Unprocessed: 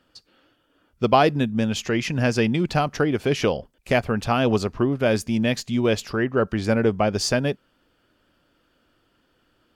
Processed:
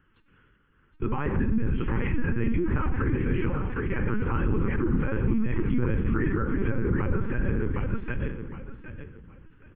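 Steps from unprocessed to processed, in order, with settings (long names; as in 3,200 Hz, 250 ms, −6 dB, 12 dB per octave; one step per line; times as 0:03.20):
sub-octave generator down 2 octaves, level +2 dB
comb filter 5.2 ms, depth 30%
repeating echo 765 ms, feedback 28%, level −8 dB
convolution reverb RT60 0.95 s, pre-delay 4 ms, DRR 5.5 dB
treble cut that deepens with the level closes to 1,900 Hz, closed at −15 dBFS
brickwall limiter −15 dBFS, peak gain reduction 11.5 dB
linear-prediction vocoder at 8 kHz pitch kept
phaser with its sweep stopped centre 1,600 Hz, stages 4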